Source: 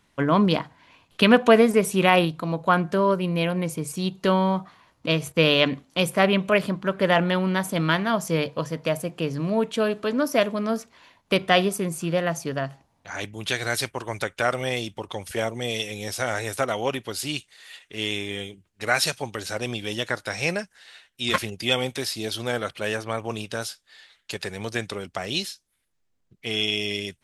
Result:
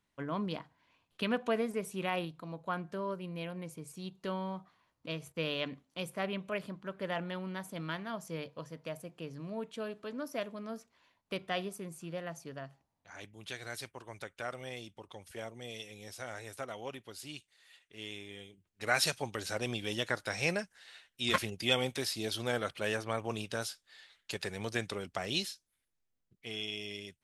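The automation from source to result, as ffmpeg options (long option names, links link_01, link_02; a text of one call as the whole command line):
ffmpeg -i in.wav -af "volume=-6.5dB,afade=type=in:start_time=18.48:duration=0.54:silence=0.316228,afade=type=out:start_time=25.44:duration=1.17:silence=0.398107" out.wav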